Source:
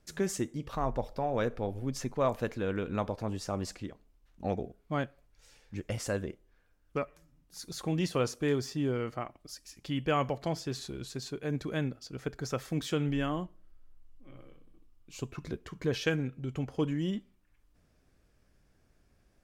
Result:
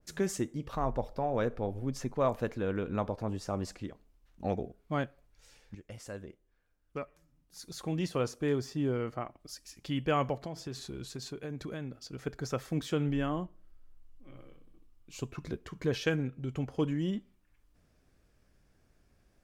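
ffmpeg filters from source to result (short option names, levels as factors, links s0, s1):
-filter_complex "[0:a]asettb=1/sr,asplit=3[s0][s1][s2];[s0]atrim=end=10.414[s3];[s1]atrim=start=10.41:end=12.27,asetpts=PTS-STARTPTS,afade=t=in:d=0.004:c=qsin,afade=t=out:st=1.856:d=0.004:c=qsin,acompressor=threshold=0.0178:ratio=4:attack=3.2:release=140:knee=1:detection=peak[s4];[s2]atrim=start=12.266[s5];[s3][s4]acrossfade=d=0.004:c1=hsin:c2=qsin[s6];[s6][s5]acrossfade=d=0.004:c1=qsin:c2=hsin,asplit=2[s7][s8];[s7]atrim=end=5.75,asetpts=PTS-STARTPTS,afade=t=out:st=5.746:d=0.004:c=hsin:silence=0.223872[s9];[s8]atrim=start=5.75,asetpts=PTS-STARTPTS,afade=t=in:d=3.16:silence=0.223872[s10];[s9][s10]concat=n=2:v=0:a=1,adynamicequalizer=threshold=0.00316:dfrequency=1700:dqfactor=0.7:tfrequency=1700:tqfactor=0.7:attack=5:release=100:ratio=0.375:range=2.5:mode=cutabove:tftype=highshelf"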